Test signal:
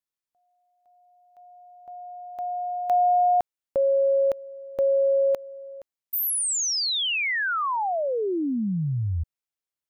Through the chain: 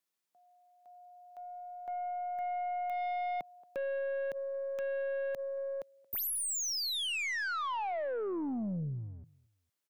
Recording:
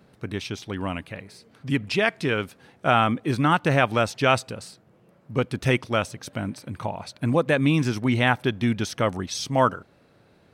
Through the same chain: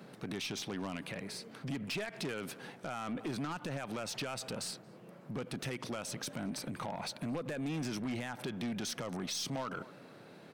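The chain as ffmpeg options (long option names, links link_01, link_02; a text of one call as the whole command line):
ffmpeg -i in.wav -filter_complex "[0:a]acompressor=threshold=-38dB:ratio=3:attack=0.93:release=39:knee=1:detection=rms,highpass=frequency=140:width=0.5412,highpass=frequency=140:width=1.3066,asplit=2[link_01][link_02];[link_02]adelay=227,lowpass=frequency=2200:poles=1,volume=-23.5dB,asplit=2[link_03][link_04];[link_04]adelay=227,lowpass=frequency=2200:poles=1,volume=0.35[link_05];[link_03][link_05]amix=inputs=2:normalize=0[link_06];[link_01][link_06]amix=inputs=2:normalize=0,alimiter=level_in=5dB:limit=-24dB:level=0:latency=1:release=132,volume=-5dB,aeval=exprs='0.0355*(cos(1*acos(clip(val(0)/0.0355,-1,1)))-cos(1*PI/2))+0.00112*(cos(4*acos(clip(val(0)/0.0355,-1,1)))-cos(4*PI/2))+0.00631*(cos(5*acos(clip(val(0)/0.0355,-1,1)))-cos(5*PI/2))+0.001*(cos(7*acos(clip(val(0)/0.0355,-1,1)))-cos(7*PI/2))+0.000224*(cos(8*acos(clip(val(0)/0.0355,-1,1)))-cos(8*PI/2))':channel_layout=same" out.wav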